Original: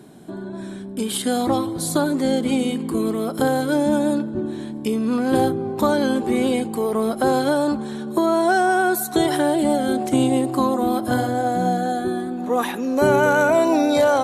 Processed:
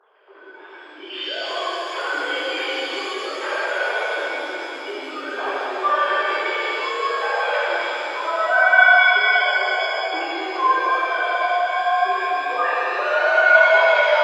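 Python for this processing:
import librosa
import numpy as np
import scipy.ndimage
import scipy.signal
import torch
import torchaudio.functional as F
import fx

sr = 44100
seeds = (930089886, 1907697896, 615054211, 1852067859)

y = fx.sine_speech(x, sr)
y = scipy.signal.sosfilt(scipy.signal.butter(2, 960.0, 'highpass', fs=sr, output='sos'), y)
y = fx.spec_topn(y, sr, count=4, at=(8.0, 10.11))
y = fx.rev_shimmer(y, sr, seeds[0], rt60_s=3.5, semitones=7, shimmer_db=-8, drr_db=-11.5)
y = F.gain(torch.from_numpy(y), -5.5).numpy()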